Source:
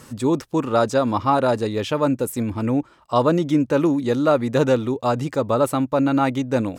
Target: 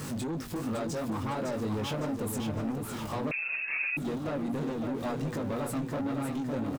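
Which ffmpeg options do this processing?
-filter_complex "[0:a]aeval=exprs='val(0)+0.5*0.0224*sgn(val(0))':c=same,equalizer=f=170:t=o:w=1.8:g=8.5,bandreject=f=60:t=h:w=6,bandreject=f=120:t=h:w=6,bandreject=f=180:t=h:w=6,bandreject=f=240:t=h:w=6,asplit=2[a][b];[b]alimiter=limit=-14dB:level=0:latency=1,volume=2.5dB[c];[a][c]amix=inputs=2:normalize=0,acompressor=threshold=-15dB:ratio=6,flanger=delay=18.5:depth=3:speed=2.8,asoftclip=type=tanh:threshold=-22dB,aecho=1:1:558|1116|1674|2232|2790|3348:0.501|0.246|0.12|0.059|0.0289|0.0142,asettb=1/sr,asplit=3[d][e][f];[d]atrim=end=3.314[g];[e]atrim=start=3.31:end=3.97,asetpts=PTS-STARTPTS,afade=t=in:d=0.004:c=qsin,afade=t=out:st=0.656:d=0.004:c=qsin,lowpass=f=2.4k:t=q:w=0.5098,lowpass=f=2.4k:t=q:w=0.6013,lowpass=f=2.4k:t=q:w=0.9,lowpass=f=2.4k:t=q:w=2.563,afreqshift=-2800[h];[f]atrim=start=3.966[i];[g][h]acrossfade=d=0.004:c1=hsin:c2=qsin[j];[j][i]acrossfade=d=0.004:c1=qsin:c2=hsin,volume=-8dB"

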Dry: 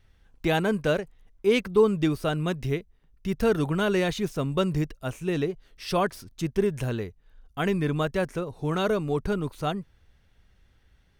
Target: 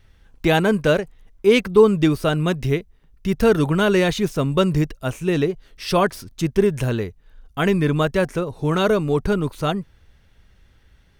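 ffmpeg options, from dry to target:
-af "bandreject=f=740:w=22,volume=7dB"

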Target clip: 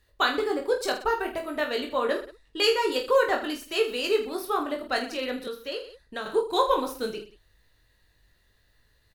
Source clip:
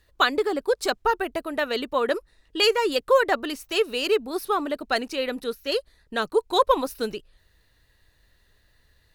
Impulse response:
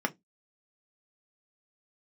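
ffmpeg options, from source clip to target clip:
-filter_complex "[0:a]aecho=1:1:20|46|79.8|123.7|180.9:0.631|0.398|0.251|0.158|0.1,asettb=1/sr,asplit=3[a][b][c];[a]atrim=end=5.474[d];[b]atrim=start=5.47:end=6.26,asetpts=PTS-STARTPTS,afade=t=in:d=0.004:c=qsin,afade=t=out:st=0.786:d=0.004:c=qsin,acrossover=split=500|4200[e][f][g];[e]acompressor=threshold=-36dB:ratio=4[h];[f]acompressor=threshold=-29dB:ratio=4[i];[g]acompressor=threshold=-46dB:ratio=4[j];[h][i][j]amix=inputs=3:normalize=0[k];[c]atrim=start=6.256[l];[d][k]acrossfade=d=0.004:c1=hsin:c2=qsin[m];[m][l]acrossfade=d=0.004:c1=qsin:c2=hsin,volume=-4.5dB"

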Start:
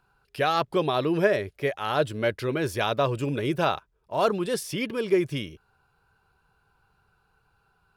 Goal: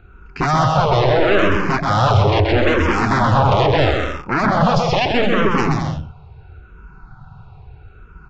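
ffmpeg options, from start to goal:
-filter_complex "[0:a]alimiter=limit=-19.5dB:level=0:latency=1:release=11,bass=f=250:g=14,treble=f=4k:g=-14,aresample=16000,aeval=exprs='0.299*sin(PI/2*5.62*val(0)/0.299)':c=same,aresample=44100,asetrate=42336,aresample=44100,aecho=1:1:130|214.5|269.4|305.1|328.3:0.631|0.398|0.251|0.158|0.1,asplit=2[a][b];[b]afreqshift=-0.76[c];[a][c]amix=inputs=2:normalize=1"

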